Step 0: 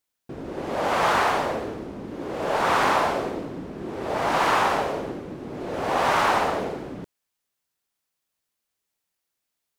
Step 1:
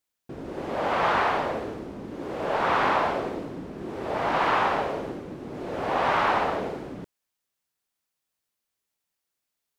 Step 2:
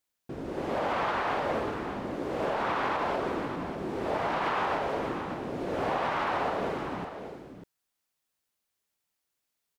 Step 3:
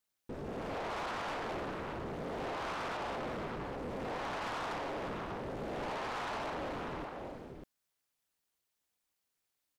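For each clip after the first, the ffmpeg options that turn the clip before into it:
-filter_complex "[0:a]acrossover=split=4200[a][b];[b]acompressor=threshold=-55dB:ratio=4:attack=1:release=60[c];[a][c]amix=inputs=2:normalize=0,volume=-2dB"
-af "alimiter=limit=-20.5dB:level=0:latency=1:release=153,aecho=1:1:593:0.355"
-af "asoftclip=type=tanh:threshold=-34dB,aeval=exprs='val(0)*sin(2*PI*130*n/s)':c=same,volume=1dB"

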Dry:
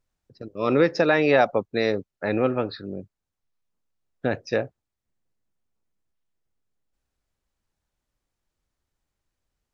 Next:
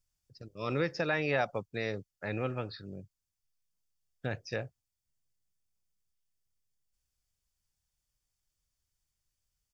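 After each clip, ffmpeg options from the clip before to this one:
-filter_complex "[0:a]bandreject=f=4k:w=8.7,acrossover=split=2900[a][b];[b]acompressor=threshold=-47dB:ratio=4:attack=1:release=60[c];[a][c]amix=inputs=2:normalize=0,firequalizer=gain_entry='entry(130,0);entry(240,-10);entry(4500,7)':delay=0.05:min_phase=1,volume=-4dB"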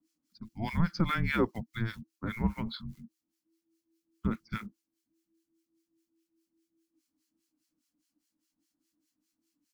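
-filter_complex "[0:a]acrusher=bits=8:mode=log:mix=0:aa=0.000001,acrossover=split=1500[a][b];[a]aeval=exprs='val(0)*(1-1/2+1/2*cos(2*PI*4.9*n/s))':c=same[c];[b]aeval=exprs='val(0)*(1-1/2-1/2*cos(2*PI*4.9*n/s))':c=same[d];[c][d]amix=inputs=2:normalize=0,afreqshift=-330,volume=6dB"

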